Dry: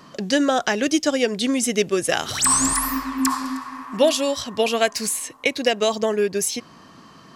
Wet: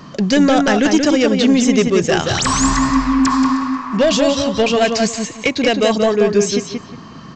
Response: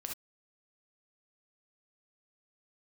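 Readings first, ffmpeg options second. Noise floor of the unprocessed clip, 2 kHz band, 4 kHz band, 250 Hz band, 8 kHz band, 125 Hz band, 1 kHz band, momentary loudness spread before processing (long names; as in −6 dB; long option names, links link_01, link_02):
−47 dBFS, +5.0 dB, +4.5 dB, +10.0 dB, −0.5 dB, +13.0 dB, +6.0 dB, 7 LU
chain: -filter_complex "[0:a]aresample=16000,asoftclip=type=tanh:threshold=-15.5dB,aresample=44100,bass=frequency=250:gain=8,treble=frequency=4000:gain=-1,asplit=2[link_01][link_02];[link_02]adelay=179,lowpass=frequency=3500:poles=1,volume=-4dB,asplit=2[link_03][link_04];[link_04]adelay=179,lowpass=frequency=3500:poles=1,volume=0.25,asplit=2[link_05][link_06];[link_06]adelay=179,lowpass=frequency=3500:poles=1,volume=0.25[link_07];[link_01][link_03][link_05][link_07]amix=inputs=4:normalize=0,volume=6.5dB"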